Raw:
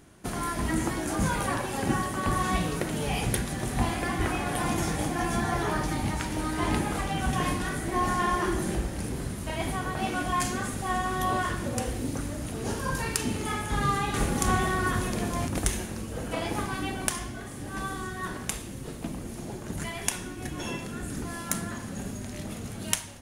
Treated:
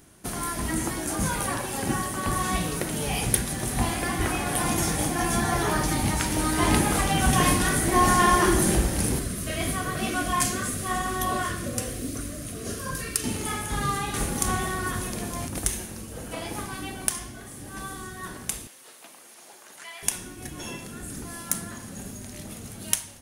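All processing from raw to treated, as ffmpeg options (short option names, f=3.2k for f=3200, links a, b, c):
-filter_complex "[0:a]asettb=1/sr,asplit=3[a][b][c];[a]atrim=end=9.194[d];[b]atrim=start=9.19:end=13.24,asetpts=PTS-STARTPTS,afade=t=in:d=0.004:c=qsin,afade=t=out:st=4.046:d=0.004:c=qsin,flanger=delay=2.8:depth=9.3:regen=-53:speed=1:shape=sinusoidal,asuperstop=centerf=870:order=12:qfactor=3.4[e];[c]atrim=start=13.236[f];[d][e]acrossfade=d=0.004:c1=hsin:c2=qsin[g];[g][f]acrossfade=d=0.004:c1=qsin:c2=hsin,asettb=1/sr,asplit=3[h][i][j];[h]atrim=end=18.674[k];[i]atrim=start=18.67:end=20.03,asetpts=PTS-STARTPTS,afade=t=in:d=0.004:c=qsin,afade=t=out:st=1.356:d=0.004:c=qsin,highpass=820,acrossover=split=5400[l][m];[m]acompressor=threshold=-52dB:ratio=4:attack=1:release=60[n];[l][n]amix=inputs=2:normalize=0[o];[j]atrim=start=20.026[p];[k][o]acrossfade=d=0.004:c1=hsin:c2=qsin[q];[q][p]acrossfade=d=0.004:c1=qsin:c2=hsin,highshelf=f=5.7k:g=10.5,bandreject=f=7.1k:w=20,dynaudnorm=f=570:g=11:m=11.5dB,volume=-1dB"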